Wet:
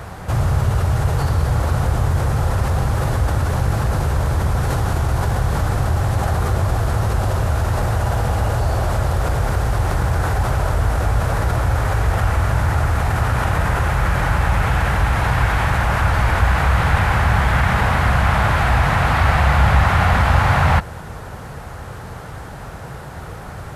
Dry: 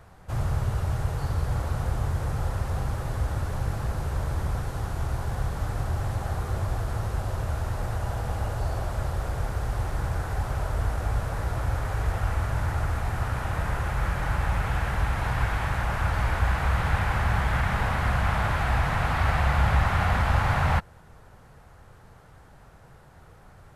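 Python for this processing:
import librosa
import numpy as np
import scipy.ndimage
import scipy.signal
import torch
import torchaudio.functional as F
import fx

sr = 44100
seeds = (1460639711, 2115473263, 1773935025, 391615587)

p1 = scipy.signal.sosfilt(scipy.signal.butter(2, 43.0, 'highpass', fs=sr, output='sos'), x)
p2 = fx.over_compress(p1, sr, threshold_db=-37.0, ratio=-1.0)
p3 = p1 + F.gain(torch.from_numpy(p2), -1.0).numpy()
y = F.gain(torch.from_numpy(p3), 8.0).numpy()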